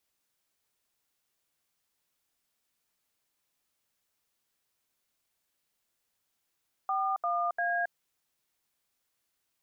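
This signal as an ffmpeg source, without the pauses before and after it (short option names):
-f lavfi -i "aevalsrc='0.0335*clip(min(mod(t,0.347),0.272-mod(t,0.347))/0.002,0,1)*(eq(floor(t/0.347),0)*(sin(2*PI*770*mod(t,0.347))+sin(2*PI*1209*mod(t,0.347)))+eq(floor(t/0.347),1)*(sin(2*PI*697*mod(t,0.347))+sin(2*PI*1209*mod(t,0.347)))+eq(floor(t/0.347),2)*(sin(2*PI*697*mod(t,0.347))+sin(2*PI*1633*mod(t,0.347))))':d=1.041:s=44100"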